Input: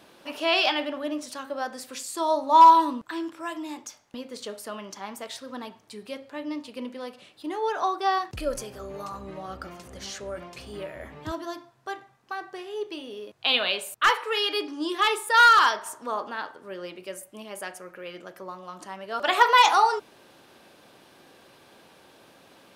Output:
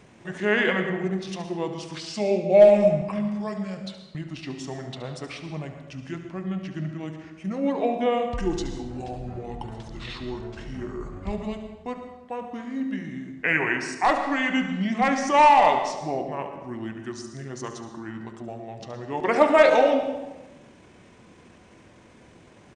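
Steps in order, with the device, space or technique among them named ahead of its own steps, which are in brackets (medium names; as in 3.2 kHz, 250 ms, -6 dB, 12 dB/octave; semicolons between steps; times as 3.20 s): monster voice (pitch shift -8 st; bass shelf 160 Hz +9 dB; delay 72 ms -12 dB; reverberation RT60 1.1 s, pre-delay 102 ms, DRR 8 dB)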